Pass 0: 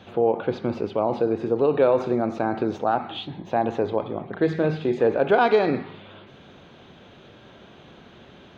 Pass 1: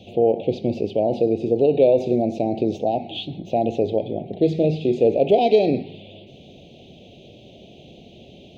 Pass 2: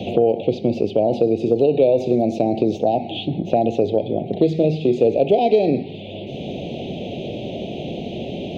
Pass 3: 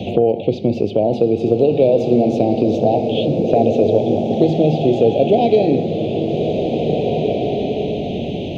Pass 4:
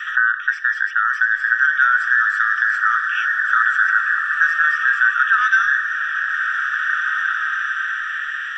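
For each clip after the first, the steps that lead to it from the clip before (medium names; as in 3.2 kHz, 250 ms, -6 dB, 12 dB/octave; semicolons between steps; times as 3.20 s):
elliptic band-stop 690–2600 Hz, stop band 70 dB; trim +4 dB
three bands compressed up and down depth 70%; trim +2 dB
bass shelf 140 Hz +6 dB; swelling reverb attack 2020 ms, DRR 3 dB; trim +1 dB
every band turned upside down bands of 2 kHz; trim -2.5 dB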